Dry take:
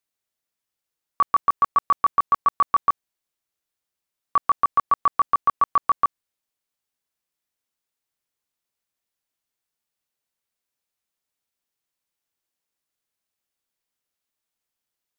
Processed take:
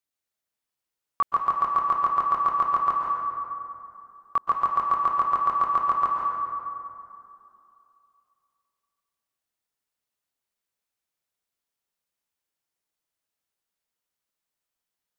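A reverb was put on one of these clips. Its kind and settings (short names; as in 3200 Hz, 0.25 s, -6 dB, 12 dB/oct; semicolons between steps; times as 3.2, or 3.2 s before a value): plate-style reverb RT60 2.7 s, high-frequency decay 0.5×, pre-delay 0.115 s, DRR -0.5 dB; gain -4.5 dB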